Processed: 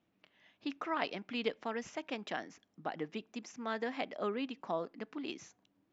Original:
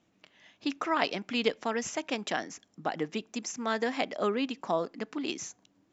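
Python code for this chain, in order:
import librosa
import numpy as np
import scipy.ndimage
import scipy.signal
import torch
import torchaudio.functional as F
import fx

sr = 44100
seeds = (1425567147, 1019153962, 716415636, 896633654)

y = scipy.signal.sosfilt(scipy.signal.butter(2, 4100.0, 'lowpass', fs=sr, output='sos'), x)
y = F.gain(torch.from_numpy(y), -7.0).numpy()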